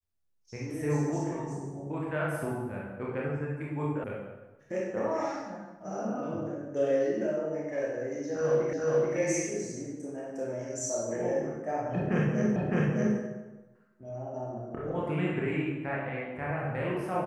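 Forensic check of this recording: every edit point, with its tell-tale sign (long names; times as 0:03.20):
0:04.04: cut off before it has died away
0:08.73: the same again, the last 0.43 s
0:12.56: the same again, the last 0.61 s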